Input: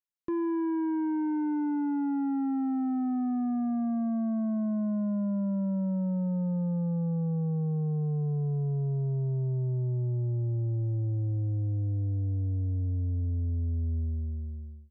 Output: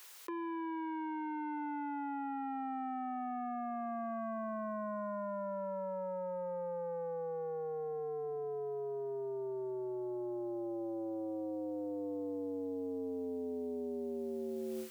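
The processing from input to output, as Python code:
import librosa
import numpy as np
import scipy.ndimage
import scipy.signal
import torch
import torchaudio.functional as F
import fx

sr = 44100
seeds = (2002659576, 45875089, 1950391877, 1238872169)

y = scipy.signal.sosfilt(scipy.signal.butter(4, 450.0, 'highpass', fs=sr, output='sos'), x)
y = fx.peak_eq(y, sr, hz=640.0, db=-9.5, octaves=0.3)
y = 10.0 ** (-34.0 / 20.0) * np.tanh(y / 10.0 ** (-34.0 / 20.0))
y = fx.env_flatten(y, sr, amount_pct=100)
y = y * 10.0 ** (1.0 / 20.0)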